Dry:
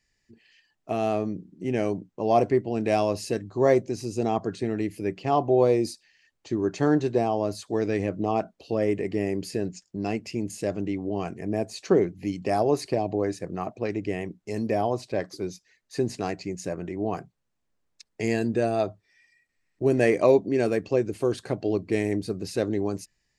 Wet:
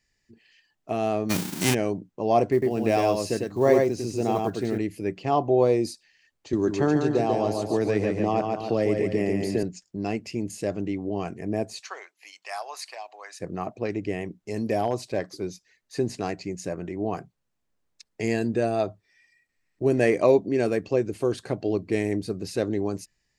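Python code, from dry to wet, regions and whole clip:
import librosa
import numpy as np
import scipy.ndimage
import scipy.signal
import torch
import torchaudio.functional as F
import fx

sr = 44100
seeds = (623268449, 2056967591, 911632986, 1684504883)

y = fx.envelope_flatten(x, sr, power=0.3, at=(1.29, 1.73), fade=0.02)
y = fx.env_flatten(y, sr, amount_pct=50, at=(1.29, 1.73), fade=0.02)
y = fx.chain(y, sr, fx.block_float(bits=7),
    fx.echo_single(ms=101, db=-3.0), at=(2.52, 4.78))
y = fx.chain(y, sr, fx.echo_feedback(ms=142, feedback_pct=39, wet_db=-5.0),
    fx.band_squash(depth_pct=70), at=(6.53, 9.63))
y = fx.chain(y, sr, fx.highpass(hz=930.0, slope=24),
    fx.quant_float(bits=8), at=(11.8, 13.4))
y = fx.chain(y, sr, fx.high_shelf(hz=6100.0, db=8.5),
    fx.clip_hard(threshold_db=-15.5), at=(14.66, 15.19))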